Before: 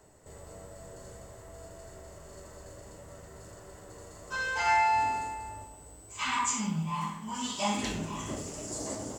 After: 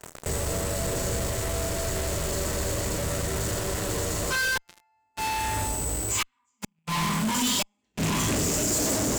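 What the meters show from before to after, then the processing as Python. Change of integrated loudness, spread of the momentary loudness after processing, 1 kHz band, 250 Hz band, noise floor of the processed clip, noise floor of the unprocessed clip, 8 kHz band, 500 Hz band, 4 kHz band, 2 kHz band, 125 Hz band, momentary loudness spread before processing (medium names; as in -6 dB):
+4.0 dB, 7 LU, -1.5 dB, +7.5 dB, -73 dBFS, -51 dBFS, +11.5 dB, +11.0 dB, +9.5 dB, +4.5 dB, +11.5 dB, 22 LU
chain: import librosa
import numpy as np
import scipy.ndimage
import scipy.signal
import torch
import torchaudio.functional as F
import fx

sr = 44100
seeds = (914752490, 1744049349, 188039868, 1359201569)

p1 = fx.rattle_buzz(x, sr, strikes_db=-33.0, level_db=-32.0)
p2 = fx.gate_flip(p1, sr, shuts_db=-23.0, range_db=-36)
p3 = fx.fuzz(p2, sr, gain_db=60.0, gate_db=-53.0)
p4 = p2 + F.gain(torch.from_numpy(p3), -3.5).numpy()
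p5 = fx.dynamic_eq(p4, sr, hz=840.0, q=0.78, threshold_db=-31.0, ratio=4.0, max_db=-5)
y = F.gain(torch.from_numpy(p5), -7.0).numpy()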